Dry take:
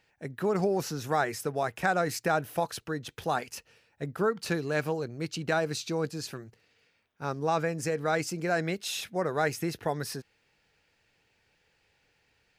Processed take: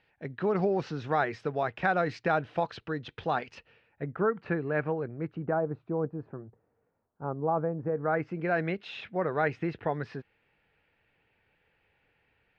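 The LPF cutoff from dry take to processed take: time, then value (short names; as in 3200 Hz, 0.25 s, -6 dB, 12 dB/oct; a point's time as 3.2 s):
LPF 24 dB/oct
3.55 s 3700 Hz
4.22 s 2100 Hz
5.08 s 2100 Hz
5.62 s 1100 Hz
7.84 s 1100 Hz
8.49 s 2900 Hz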